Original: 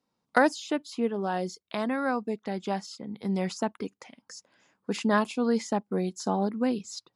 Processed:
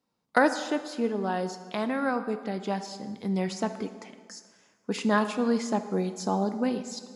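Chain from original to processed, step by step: plate-style reverb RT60 1.6 s, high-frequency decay 0.75×, DRR 9 dB

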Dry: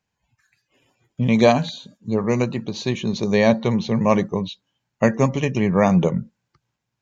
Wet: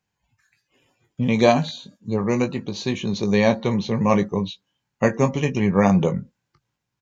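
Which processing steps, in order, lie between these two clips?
band-stop 630 Hz, Q 12; doubling 20 ms -8.5 dB; trim -1 dB

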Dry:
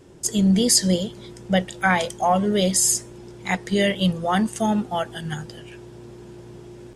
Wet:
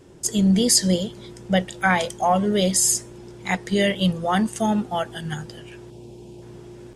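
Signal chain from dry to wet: 5.90–6.42 s: high-order bell 1.5 kHz -16 dB 1.1 oct

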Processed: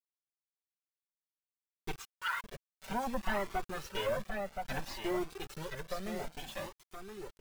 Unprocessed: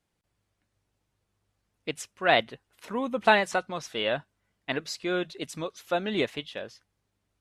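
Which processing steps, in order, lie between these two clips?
comb filter that takes the minimum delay 5.2 ms; 1.99–2.44 s: Chebyshev band-pass 930–8900 Hz, order 5; low-pass that closes with the level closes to 1.4 kHz, closed at -27 dBFS; treble shelf 4.2 kHz -4.5 dB; in parallel at -3 dB: peak limiter -27 dBFS, peak gain reduction 11 dB; 5.25–6.42 s: on the sum: compression 2:1, threshold -36 dBFS, peak gain reduction 7.5 dB; bit crusher 7-bit; saturation -19.5 dBFS, distortion -19 dB; delay 1022 ms -6 dB; Shepard-style flanger rising 0.59 Hz; trim -1.5 dB

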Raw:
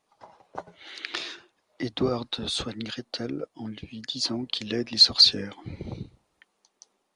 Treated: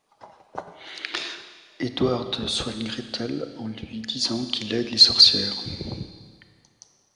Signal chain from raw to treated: Schroeder reverb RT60 1.7 s, combs from 28 ms, DRR 9 dB; trim +3 dB

